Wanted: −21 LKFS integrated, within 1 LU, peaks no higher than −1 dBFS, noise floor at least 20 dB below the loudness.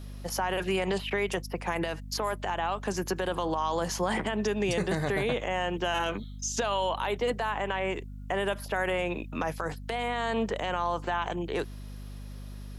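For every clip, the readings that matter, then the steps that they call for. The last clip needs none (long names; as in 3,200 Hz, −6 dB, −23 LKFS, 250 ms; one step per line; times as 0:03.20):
mains hum 50 Hz; hum harmonics up to 250 Hz; level of the hum −39 dBFS; integrated loudness −30.5 LKFS; sample peak −17.0 dBFS; target loudness −21.0 LKFS
→ hum removal 50 Hz, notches 5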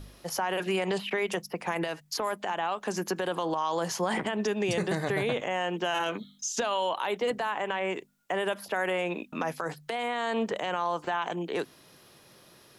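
mains hum none found; integrated loudness −30.5 LKFS; sample peak −17.5 dBFS; target loudness −21.0 LKFS
→ level +9.5 dB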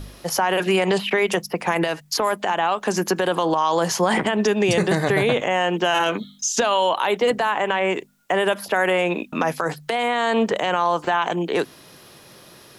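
integrated loudness −21.0 LKFS; sample peak −8.0 dBFS; background noise floor −48 dBFS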